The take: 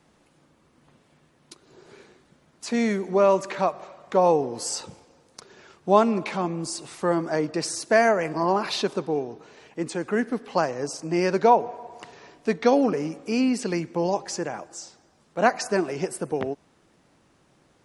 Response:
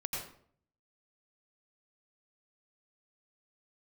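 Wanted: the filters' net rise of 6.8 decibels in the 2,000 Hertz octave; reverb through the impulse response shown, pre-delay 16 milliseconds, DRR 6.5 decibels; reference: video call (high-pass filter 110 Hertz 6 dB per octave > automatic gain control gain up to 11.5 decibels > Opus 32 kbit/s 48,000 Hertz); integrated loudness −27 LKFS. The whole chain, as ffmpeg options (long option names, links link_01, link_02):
-filter_complex "[0:a]equalizer=frequency=2000:width_type=o:gain=8.5,asplit=2[link_01][link_02];[1:a]atrim=start_sample=2205,adelay=16[link_03];[link_02][link_03]afir=irnorm=-1:irlink=0,volume=-9dB[link_04];[link_01][link_04]amix=inputs=2:normalize=0,highpass=frequency=110:poles=1,dynaudnorm=maxgain=11.5dB,volume=-4dB" -ar 48000 -c:a libopus -b:a 32k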